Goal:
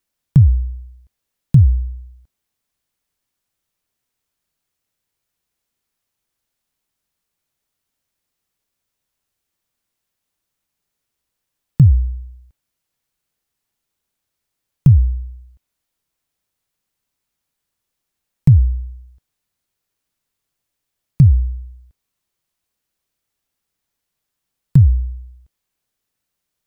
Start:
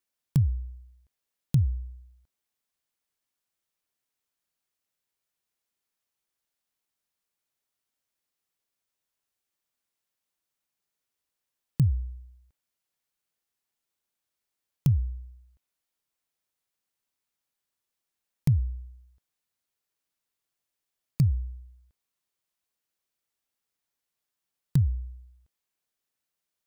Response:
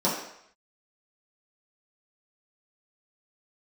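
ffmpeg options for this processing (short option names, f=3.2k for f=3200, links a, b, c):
-filter_complex "[0:a]lowshelf=f=200:g=9,acrossover=split=610|2600[a][b][c];[c]alimiter=level_in=10dB:limit=-24dB:level=0:latency=1:release=135,volume=-10dB[d];[a][b][d]amix=inputs=3:normalize=0,volume=6.5dB"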